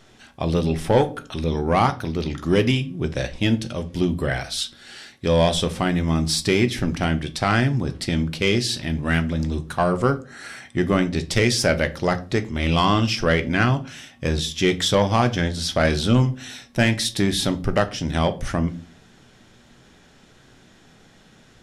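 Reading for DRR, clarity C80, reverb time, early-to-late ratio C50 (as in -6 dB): 8.5 dB, 23.0 dB, 0.40 s, 17.5 dB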